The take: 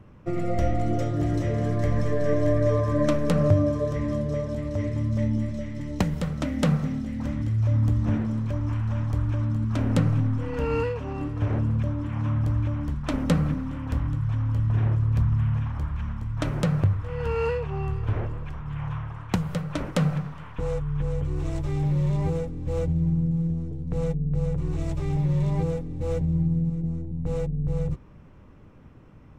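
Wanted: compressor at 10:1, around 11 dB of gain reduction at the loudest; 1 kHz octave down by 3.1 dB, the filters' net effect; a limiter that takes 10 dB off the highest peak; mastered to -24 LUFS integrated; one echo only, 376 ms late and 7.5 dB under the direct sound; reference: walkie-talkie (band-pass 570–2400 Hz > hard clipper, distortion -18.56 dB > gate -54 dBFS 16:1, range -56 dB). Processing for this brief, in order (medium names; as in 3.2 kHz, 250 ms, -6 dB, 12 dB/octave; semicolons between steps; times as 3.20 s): peaking EQ 1 kHz -3 dB; compression 10:1, threshold -26 dBFS; peak limiter -24 dBFS; band-pass 570–2400 Hz; delay 376 ms -7.5 dB; hard clipper -35 dBFS; gate -54 dBFS 16:1, range -56 dB; trim +20.5 dB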